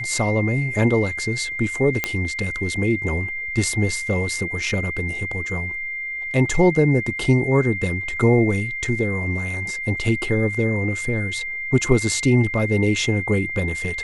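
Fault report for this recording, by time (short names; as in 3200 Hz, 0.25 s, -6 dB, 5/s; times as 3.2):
tone 2100 Hz -26 dBFS
2.04 pop -5 dBFS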